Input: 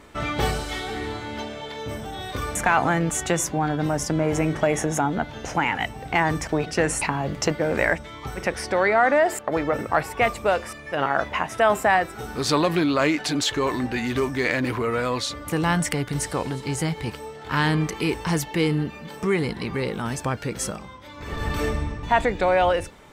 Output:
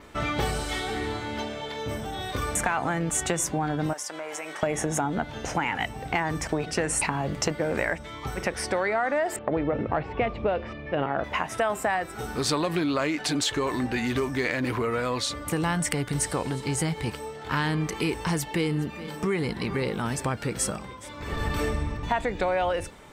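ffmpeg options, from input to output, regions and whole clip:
ffmpeg -i in.wav -filter_complex "[0:a]asettb=1/sr,asplit=3[link_01][link_02][link_03];[link_01]atrim=end=3.934[link_04];[link_02]atrim=start=3.93:end=4.63,asetpts=PTS-STARTPTS,afade=type=in:duration=0.004:curve=qsin,afade=type=out:start_time=0.696:duration=0.004:curve=qsin,highpass=800,acompressor=threshold=-31dB:ratio=4:attack=3.2:release=140:knee=1:detection=peak[link_05];[link_03]atrim=start=4.626[link_06];[link_04][link_05]acrossfade=duration=0.004:curve1=hsin:curve2=qsin[link_07];[link_07][link_06]acrossfade=duration=0.004:curve1=qsin:curve2=hsin,asettb=1/sr,asplit=3[link_08][link_09][link_10];[link_08]atrim=end=9.364[link_11];[link_09]atrim=start=9.36:end=11.24,asetpts=PTS-STARTPTS,afade=type=in:duration=0.004:curve=qsin,afade=type=out:start_time=1.876:duration=0.004:curve=qsin,lowpass=frequency=3100:width=0.5412,lowpass=frequency=3100:width=1.3066,equalizer=frequency=1500:width=0.58:gain=-10,acontrast=55[link_12];[link_10]atrim=start=11.236[link_13];[link_11][link_12]acrossfade=duration=0.004:curve1=hsin:curve2=qsin[link_14];[link_14][link_13]acrossfade=duration=0.004:curve1=qsin:curve2=hsin,asettb=1/sr,asplit=3[link_15][link_16][link_17];[link_15]atrim=end=18.344[link_18];[link_16]atrim=start=18.34:end=21.97,asetpts=PTS-STARTPTS,afade=type=in:duration=0.004:curve=qsin,afade=type=out:start_time=3.626:duration=0.004:curve=qsin,bandreject=frequency=6300:width=25,aecho=1:1:419:0.112,atrim=end_sample=160083[link_19];[link_17]atrim=start=21.966[link_20];[link_18][link_19]acrossfade=duration=0.004:curve1=hsin:curve2=qsin[link_21];[link_21][link_20]acrossfade=duration=0.004:curve1=qsin:curve2=hsin,acompressor=threshold=-23dB:ratio=4,adynamicequalizer=threshold=0.00282:dfrequency=8500:dqfactor=4.9:tfrequency=8500:tqfactor=4.9:attack=5:release=100:ratio=0.375:range=3:mode=boostabove:tftype=bell" out.wav

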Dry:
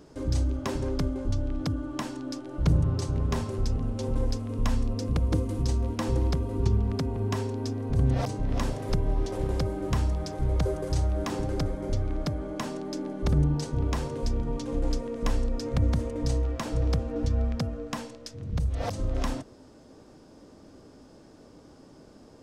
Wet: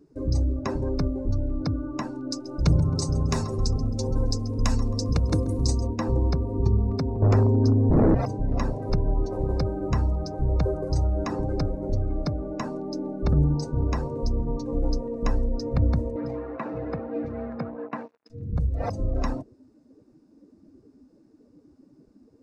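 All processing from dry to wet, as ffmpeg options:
ffmpeg -i in.wav -filter_complex "[0:a]asettb=1/sr,asplit=3[link_01][link_02][link_03];[link_01]atrim=end=2.314[link_04];[link_02]atrim=start=2.31:end=5.87,asetpts=PTS-STARTPTS,afade=type=in:duration=0.004:curve=qsin,afade=type=out:start_time=3.556:duration=0.004:curve=qsin,highshelf=frequency=3400:gain=10,aecho=1:1:134|268|402|536|670|804|938:0.266|0.154|0.0895|0.0519|0.0301|0.0175|0.0101,atrim=end_sample=156996[link_05];[link_03]atrim=start=5.866[link_06];[link_04][link_05]acrossfade=duration=0.004:curve1=hsin:curve2=qsin[link_07];[link_07][link_06]acrossfade=duration=0.004:curve1=qsin:curve2=hsin,asettb=1/sr,asplit=3[link_08][link_09][link_10];[link_08]atrim=end=7.224[link_11];[link_09]atrim=start=7.22:end=8.15,asetpts=PTS-STARTPTS,afade=type=in:duration=0.004:curve=qsin,afade=type=out:start_time=0.926:duration=0.004:curve=qsin,lowshelf=frequency=410:gain=12,aeval=exprs='0.178*(abs(mod(val(0)/0.178+3,4)-2)-1)':channel_layout=same[link_12];[link_10]atrim=start=8.146[link_13];[link_11][link_12]acrossfade=duration=0.004:curve1=hsin:curve2=qsin[link_14];[link_14][link_13]acrossfade=duration=0.004:curve1=qsin:curve2=hsin,asettb=1/sr,asplit=3[link_15][link_16][link_17];[link_15]atrim=end=16.164[link_18];[link_16]atrim=start=16.16:end=18.3,asetpts=PTS-STARTPTS,afade=type=in:duration=0.004:curve=qsin,afade=type=out:start_time=2.136:duration=0.004:curve=qsin,acrusher=bits=5:mix=0:aa=0.5,highpass=200,lowpass=2900[link_19];[link_17]atrim=start=18.296[link_20];[link_18][link_19]acrossfade=duration=0.004:curve1=hsin:curve2=qsin[link_21];[link_21][link_20]acrossfade=duration=0.004:curve1=qsin:curve2=hsin,bandreject=frequency=3200:width=5.4,afftdn=noise_reduction=19:noise_floor=-40,volume=2.5dB" out.wav

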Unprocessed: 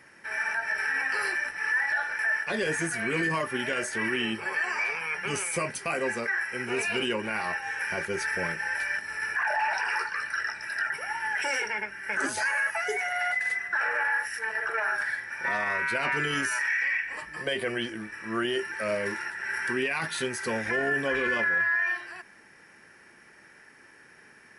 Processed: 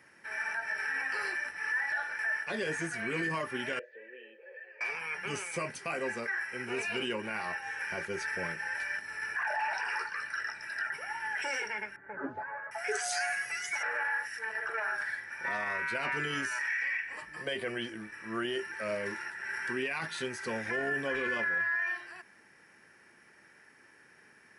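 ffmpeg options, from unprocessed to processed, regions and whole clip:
ffmpeg -i in.wav -filter_complex "[0:a]asettb=1/sr,asplit=3[link_01][link_02][link_03];[link_01]atrim=end=3.794[link_04];[link_02]atrim=start=3.79:end=4.81,asetpts=PTS-STARTPTS,afade=type=in:duration=0.004:curve=qsin,afade=type=out:start_time=1.016:duration=0.004:curve=qsin,asplit=3[link_05][link_06][link_07];[link_05]bandpass=frequency=530:width_type=q:width=8,volume=0dB[link_08];[link_06]bandpass=frequency=1840:width_type=q:width=8,volume=-6dB[link_09];[link_07]bandpass=frequency=2480:width_type=q:width=8,volume=-9dB[link_10];[link_08][link_09][link_10]amix=inputs=3:normalize=0,highpass=390,equalizer=frequency=490:width_type=q:width=4:gain=8,equalizer=frequency=710:width_type=q:width=4:gain=-10,equalizer=frequency=1400:width_type=q:width=4:gain=-9,equalizer=frequency=2000:width_type=q:width=4:gain=-8,equalizer=frequency=2800:width_type=q:width=4:gain=-8,lowpass=frequency=3400:width=0.5412,lowpass=frequency=3400:width=1.3066[link_11];[link_03]atrim=start=4.806[link_12];[link_04][link_11]acrossfade=duration=0.004:curve1=hsin:curve2=qsin[link_13];[link_13][link_12]acrossfade=duration=0.004:curve1=qsin:curve2=hsin,asettb=1/sr,asplit=3[link_14][link_15][link_16];[link_14]atrim=end=11.964[link_17];[link_15]atrim=start=11.96:end=13.83,asetpts=PTS-STARTPTS,afade=type=in:duration=0.004:curve=qsin,afade=type=out:start_time=1.866:duration=0.004:curve=qsin,bass=frequency=250:gain=1,treble=frequency=4000:gain=11,aecho=1:1:7.1:0.38,atrim=end_sample=82467,acrossover=split=1300[link_18][link_19];[link_19]adelay=750[link_20];[link_18][link_20]amix=inputs=2:normalize=0,atrim=end_sample=82467[link_21];[link_16]atrim=start=13.826[link_22];[link_17][link_21]acrossfade=duration=0.004:curve1=hsin:curve2=qsin[link_23];[link_23][link_22]acrossfade=duration=0.004:curve1=qsin:curve2=hsin,highpass=55,acrossover=split=8600[link_24][link_25];[link_25]acompressor=threshold=-55dB:ratio=4:attack=1:release=60[link_26];[link_24][link_26]amix=inputs=2:normalize=0,volume=-5.5dB" out.wav

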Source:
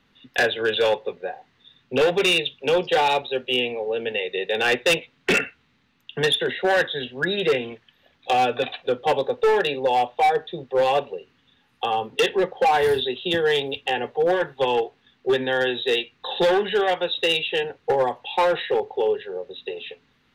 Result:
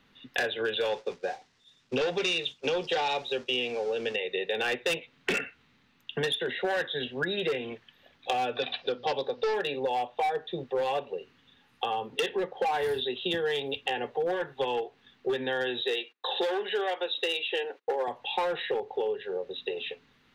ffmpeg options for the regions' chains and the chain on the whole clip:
ffmpeg -i in.wav -filter_complex "[0:a]asettb=1/sr,asplit=3[link_01][link_02][link_03];[link_01]atrim=end=0.894[link_04];[link_02]atrim=start=0.89:end=4.16,asetpts=PTS-STARTPTS,afade=type=in:duration=0.004:curve=qsin,afade=type=out:start_time=3.266:duration=0.004:curve=qsin,aeval=exprs='val(0)+0.5*0.0126*sgn(val(0))':channel_layout=same,agate=range=-33dB:threshold=-30dB:ratio=3:release=100:detection=peak,lowpass=frequency=5700:width_type=q:width=1.8[link_05];[link_03]atrim=start=4.156[link_06];[link_04][link_05]acrossfade=duration=0.004:curve1=hsin:curve2=qsin[link_07];[link_07][link_06]acrossfade=duration=0.004:curve1=qsin:curve2=hsin,asettb=1/sr,asplit=3[link_08][link_09][link_10];[link_08]atrim=end=8.554[link_11];[link_09]atrim=start=8.55:end=9.54,asetpts=PTS-STARTPTS,afade=type=in:duration=0.004:curve=qsin,afade=type=out:start_time=0.986:duration=0.004:curve=qsin,lowpass=frequency=5000:width_type=q:width=4.2,bandreject=frequency=60:width_type=h:width=6,bandreject=frequency=120:width_type=h:width=6,bandreject=frequency=180:width_type=h:width=6,bandreject=frequency=240:width_type=h:width=6,bandreject=frequency=300:width_type=h:width=6[link_12];[link_10]atrim=start=9.536[link_13];[link_11][link_12]acrossfade=duration=0.004:curve1=hsin:curve2=qsin[link_14];[link_14][link_13]acrossfade=duration=0.004:curve1=qsin:curve2=hsin,asettb=1/sr,asplit=3[link_15][link_16][link_17];[link_15]atrim=end=15.814[link_18];[link_16]atrim=start=15.81:end=18.08,asetpts=PTS-STARTPTS,afade=type=in:duration=0.004:curve=qsin,afade=type=out:start_time=2.266:duration=0.004:curve=qsin,highpass=frequency=290:width=0.5412,highpass=frequency=290:width=1.3066,agate=range=-26dB:threshold=-54dB:ratio=16:release=100:detection=peak[link_19];[link_17]atrim=start=18.076[link_20];[link_18][link_19]acrossfade=duration=0.004:curve1=hsin:curve2=qsin[link_21];[link_21][link_20]acrossfade=duration=0.004:curve1=qsin:curve2=hsin,equalizer=frequency=69:width_type=o:width=2.2:gain=-2.5,acompressor=threshold=-28dB:ratio=4" out.wav

